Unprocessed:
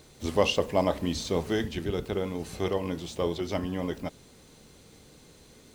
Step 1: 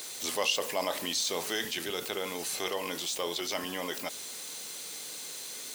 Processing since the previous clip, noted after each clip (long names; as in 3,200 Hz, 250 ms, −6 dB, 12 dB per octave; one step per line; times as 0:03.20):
high-pass filter 410 Hz 6 dB per octave
spectral tilt +3.5 dB per octave
envelope flattener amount 50%
level −6.5 dB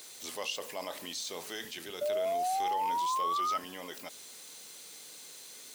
sound drawn into the spectrogram rise, 0:02.01–0:03.58, 580–1,300 Hz −23 dBFS
level −8 dB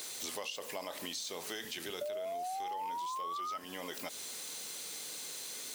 downward compressor 10 to 1, threshold −43 dBFS, peak gain reduction 14.5 dB
level +6 dB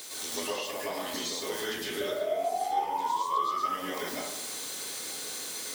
dense smooth reverb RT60 0.79 s, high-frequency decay 0.45×, pre-delay 95 ms, DRR −7.5 dB